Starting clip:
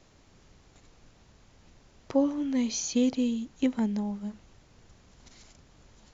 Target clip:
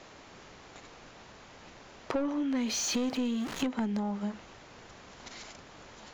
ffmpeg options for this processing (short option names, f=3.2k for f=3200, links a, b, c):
-filter_complex "[0:a]asettb=1/sr,asplit=3[a][b][c];[a]atrim=end=2.624[d];[b]atrim=start=2.62:end=3.64,asetpts=PTS-STARTPTS,afade=t=in:d=0.004:c=qsin,afade=t=out:st=1.016:d=0.004:c=qsin,aeval=exprs='val(0)+0.5*0.00944*sgn(val(0))':c=same[e];[c]atrim=start=3.636[f];[d][e]acrossfade=d=0.004:c1=hsin:c2=qsin[g];[g][f]acrossfade=d=0.004:c1=qsin:c2=hsin,asplit=2[h][i];[i]highpass=f=720:p=1,volume=21dB,asoftclip=type=tanh:threshold=-13.5dB[j];[h][j]amix=inputs=2:normalize=0,lowpass=f=2.2k:p=1,volume=-6dB,acompressor=threshold=-29dB:ratio=5"